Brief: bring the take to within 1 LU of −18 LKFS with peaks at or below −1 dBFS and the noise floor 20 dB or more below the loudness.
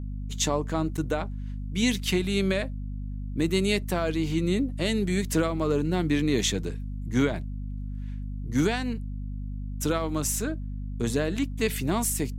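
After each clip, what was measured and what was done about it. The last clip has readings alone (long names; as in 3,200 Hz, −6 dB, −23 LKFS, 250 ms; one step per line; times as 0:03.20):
number of dropouts 1; longest dropout 7.0 ms; mains hum 50 Hz; hum harmonics up to 250 Hz; level of the hum −31 dBFS; integrated loudness −28.0 LKFS; sample peak −12.0 dBFS; target loudness −18.0 LKFS
→ repair the gap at 0:00.97, 7 ms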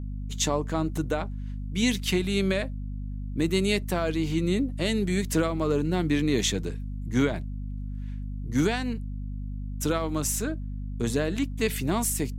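number of dropouts 0; mains hum 50 Hz; hum harmonics up to 250 Hz; level of the hum −31 dBFS
→ hum removal 50 Hz, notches 5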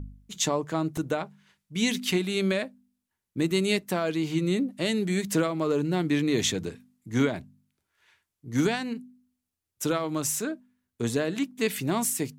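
mains hum none found; integrated loudness −27.5 LKFS; sample peak −12.5 dBFS; target loudness −18.0 LKFS
→ level +9.5 dB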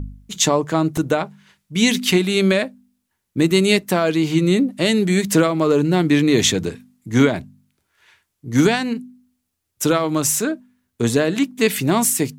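integrated loudness −18.0 LKFS; sample peak −3.0 dBFS; background noise floor −75 dBFS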